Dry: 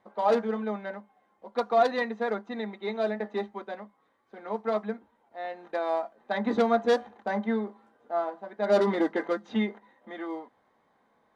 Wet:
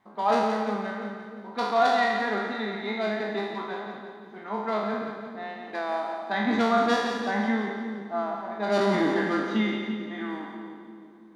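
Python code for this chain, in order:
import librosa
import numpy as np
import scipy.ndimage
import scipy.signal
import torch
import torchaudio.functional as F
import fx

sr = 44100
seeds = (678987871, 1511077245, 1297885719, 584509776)

y = fx.spec_trails(x, sr, decay_s=1.03)
y = fx.peak_eq(y, sr, hz=520.0, db=-13.0, octaves=0.46)
y = fx.echo_split(y, sr, split_hz=480.0, low_ms=331, high_ms=173, feedback_pct=52, wet_db=-7)
y = y * 10.0 ** (1.5 / 20.0)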